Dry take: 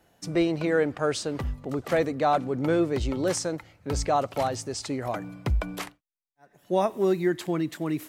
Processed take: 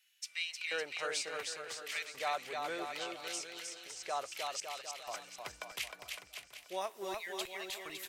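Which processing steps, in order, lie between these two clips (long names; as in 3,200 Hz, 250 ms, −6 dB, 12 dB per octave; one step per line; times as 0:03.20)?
auto-filter high-pass square 0.7 Hz 340–2,500 Hz
repeating echo 946 ms, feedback 45%, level −23 dB
0:02.98–0:04.05: downward compressor, threshold −35 dBFS, peak gain reduction 13 dB
0:04.60–0:05.24: noise gate with hold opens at −20 dBFS
guitar amp tone stack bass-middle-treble 10-0-10
bouncing-ball delay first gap 310 ms, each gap 0.8×, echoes 5
level −3 dB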